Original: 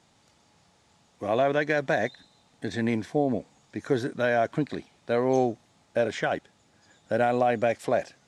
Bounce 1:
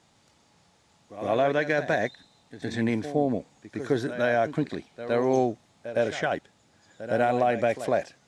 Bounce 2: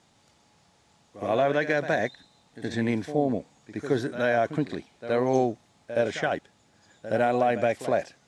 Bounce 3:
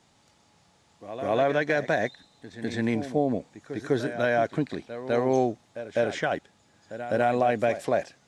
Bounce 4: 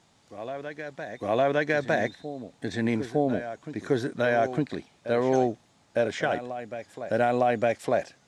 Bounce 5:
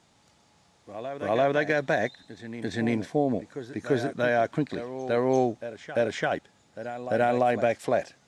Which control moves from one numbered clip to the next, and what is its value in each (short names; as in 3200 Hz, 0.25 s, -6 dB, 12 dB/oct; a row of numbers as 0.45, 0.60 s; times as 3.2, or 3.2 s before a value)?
reverse echo, time: 112, 70, 202, 907, 342 ms